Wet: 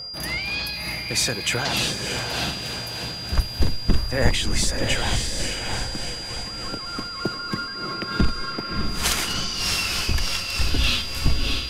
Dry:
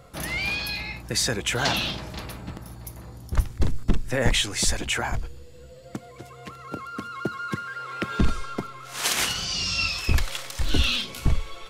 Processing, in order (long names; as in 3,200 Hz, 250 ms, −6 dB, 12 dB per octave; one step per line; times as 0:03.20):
feedback delay with all-pass diffusion 678 ms, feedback 47%, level −3.5 dB
amplitude tremolo 3.3 Hz, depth 44%
steady tone 4,800 Hz −34 dBFS
level +2 dB